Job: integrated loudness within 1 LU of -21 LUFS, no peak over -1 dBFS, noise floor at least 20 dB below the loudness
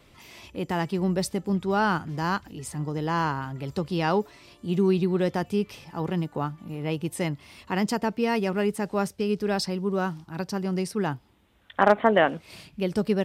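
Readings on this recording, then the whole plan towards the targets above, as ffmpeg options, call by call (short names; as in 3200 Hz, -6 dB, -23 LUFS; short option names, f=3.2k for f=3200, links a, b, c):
loudness -27.0 LUFS; peak -6.0 dBFS; loudness target -21.0 LUFS
-> -af "volume=6dB,alimiter=limit=-1dB:level=0:latency=1"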